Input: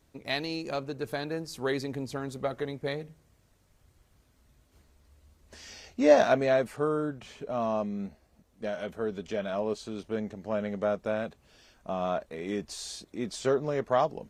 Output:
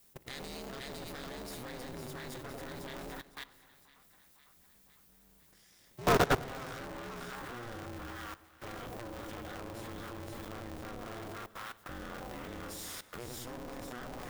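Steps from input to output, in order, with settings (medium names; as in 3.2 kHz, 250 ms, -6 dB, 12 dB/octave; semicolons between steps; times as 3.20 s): comb filter that takes the minimum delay 0.56 ms; two-band feedback delay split 860 Hz, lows 96 ms, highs 505 ms, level -4 dB; vibrato 3.7 Hz 48 cents; in parallel at -11.5 dB: word length cut 8-bit, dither triangular; on the sum: treble shelf 9.5 kHz +10.5 dB; level held to a coarse grid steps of 20 dB; on a send at -19 dB: reverberation RT60 2.4 s, pre-delay 38 ms; on the sum: polarity switched at an audio rate 120 Hz; trim -3.5 dB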